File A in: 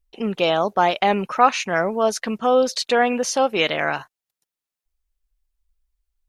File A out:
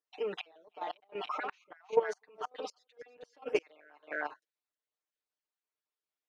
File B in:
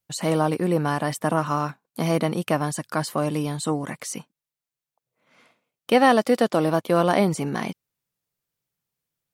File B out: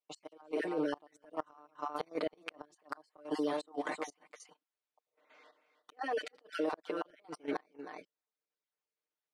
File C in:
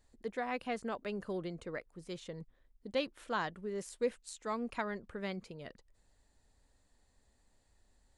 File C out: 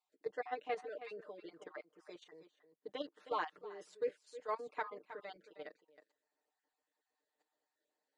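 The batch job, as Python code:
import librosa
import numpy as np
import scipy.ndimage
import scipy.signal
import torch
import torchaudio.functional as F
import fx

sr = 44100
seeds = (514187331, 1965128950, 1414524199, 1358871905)

y = fx.spec_dropout(x, sr, seeds[0], share_pct=21)
y = 10.0 ** (-7.5 / 20.0) * np.tanh(y / 10.0 ** (-7.5 / 20.0))
y = fx.over_compress(y, sr, threshold_db=-23.0, ratio=-0.5)
y = scipy.signal.sosfilt(scipy.signal.butter(4, 340.0, 'highpass', fs=sr, output='sos'), y)
y = fx.high_shelf(y, sr, hz=4600.0, db=11.0)
y = y + 10.0 ** (-13.0 / 20.0) * np.pad(y, (int(314 * sr / 1000.0), 0))[:len(y)]
y = fx.gate_flip(y, sr, shuts_db=-14.0, range_db=-33)
y = fx.level_steps(y, sr, step_db=12)
y = fx.spacing_loss(y, sr, db_at_10k=28)
y = y + 0.92 * np.pad(y, (int(6.6 * sr / 1000.0), 0))[:len(y)]
y = y * librosa.db_to_amplitude(1.0)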